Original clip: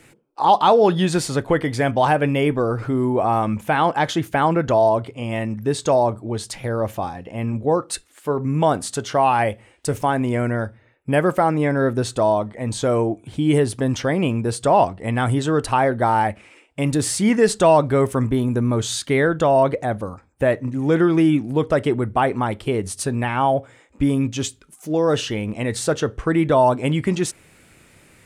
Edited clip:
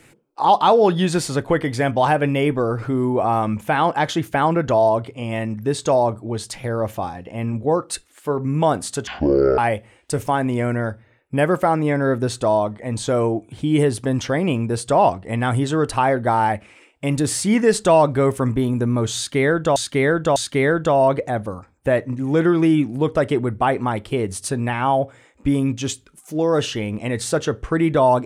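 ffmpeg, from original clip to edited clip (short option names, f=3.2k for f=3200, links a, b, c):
-filter_complex "[0:a]asplit=5[a][b][c][d][e];[a]atrim=end=9.074[f];[b]atrim=start=9.07:end=9.33,asetpts=PTS-STARTPTS,asetrate=22491,aresample=44100,atrim=end_sample=22482,asetpts=PTS-STARTPTS[g];[c]atrim=start=9.326:end=19.512[h];[d]atrim=start=18.908:end=19.512[i];[e]atrim=start=18.908[j];[f][g]acrossfade=d=0.004:c1=hsin:c2=hsin[k];[k][h]acrossfade=d=0.004:c1=hsin:c2=hsin[l];[l][i]acrossfade=d=0.004:c1=hsin:c2=hsin[m];[m][j]acrossfade=d=0.004:c1=hsin:c2=hsin"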